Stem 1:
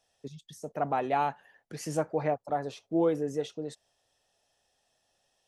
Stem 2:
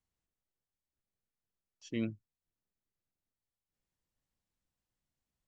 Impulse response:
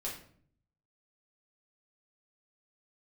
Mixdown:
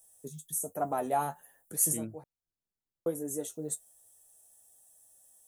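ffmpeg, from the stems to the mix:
-filter_complex "[0:a]aexciter=amount=9.3:drive=9.9:freq=7600,flanger=delay=9.9:depth=3.3:regen=38:speed=1.2:shape=sinusoidal,volume=1.26,asplit=3[s0][s1][s2];[s0]atrim=end=2.24,asetpts=PTS-STARTPTS,afade=t=out:st=2.236:d=0.004:c=hsin[s3];[s1]atrim=start=2.24:end=3.06,asetpts=PTS-STARTPTS,volume=0[s4];[s2]atrim=start=3.06,asetpts=PTS-STARTPTS,afade=t=in:d=0.004:c=hsin[s5];[s3][s4][s5]concat=n=3:v=0:a=1[s6];[1:a]volume=0.668,asplit=2[s7][s8];[s8]apad=whole_len=241440[s9];[s6][s9]sidechaincompress=threshold=0.00562:ratio=16:attack=5.4:release=1470[s10];[s10][s7]amix=inputs=2:normalize=0,equalizer=f=2400:w=1.4:g=-9.5"

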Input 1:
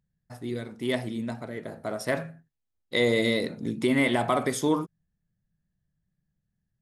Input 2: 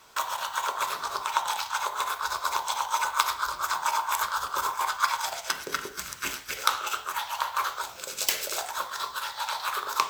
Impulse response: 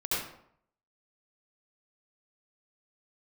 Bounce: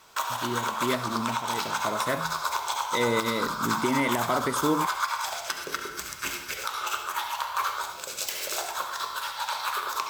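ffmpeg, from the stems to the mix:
-filter_complex "[0:a]volume=1[s0];[1:a]volume=0.841,asplit=2[s1][s2];[s2]volume=0.266[s3];[2:a]atrim=start_sample=2205[s4];[s3][s4]afir=irnorm=-1:irlink=0[s5];[s0][s1][s5]amix=inputs=3:normalize=0,alimiter=limit=0.2:level=0:latency=1:release=205"

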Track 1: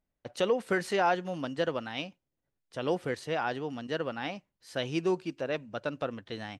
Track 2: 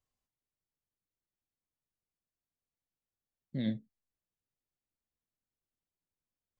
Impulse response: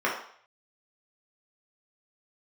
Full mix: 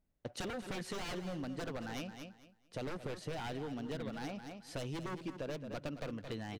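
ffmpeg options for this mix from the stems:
-filter_complex "[0:a]aeval=exprs='0.0355*(abs(mod(val(0)/0.0355+3,4)-2)-1)':c=same,lowshelf=f=420:g=7.5,volume=0.75,asplit=2[s0][s1];[s1]volume=0.266[s2];[1:a]adelay=400,volume=0.596[s3];[s2]aecho=0:1:219|438|657|876:1|0.22|0.0484|0.0106[s4];[s0][s3][s4]amix=inputs=3:normalize=0,acompressor=threshold=0.0126:ratio=6"

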